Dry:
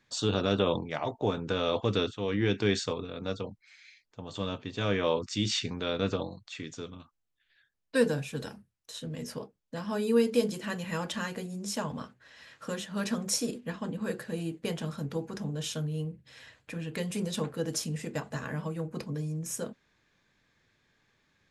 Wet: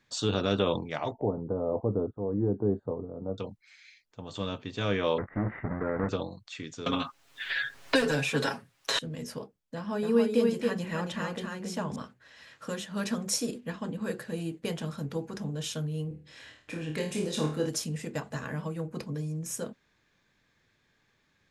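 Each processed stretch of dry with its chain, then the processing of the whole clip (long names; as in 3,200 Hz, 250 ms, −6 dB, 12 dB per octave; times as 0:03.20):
0:01.12–0:03.38: inverse Chebyshev low-pass filter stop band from 2,200 Hz, stop band 50 dB + upward compression, threshold −40 dBFS
0:05.18–0:06.09: each half-wave held at its own peak + Chebyshev low-pass filter 2,000 Hz, order 6 + downward compressor 2.5 to 1, threshold −27 dBFS
0:06.86–0:08.99: mid-hump overdrive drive 20 dB, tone 3,100 Hz, clips at −12.5 dBFS + comb filter 7.3 ms, depth 89% + multiband upward and downward compressor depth 100%
0:09.75–0:11.96: high-shelf EQ 4,000 Hz −8.5 dB + single-tap delay 275 ms −3.5 dB
0:16.08–0:17.69: low-pass filter 10,000 Hz + parametric band 320 Hz +6 dB 0.42 octaves + flutter between parallel walls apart 4.5 metres, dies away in 0.4 s
whole clip: no processing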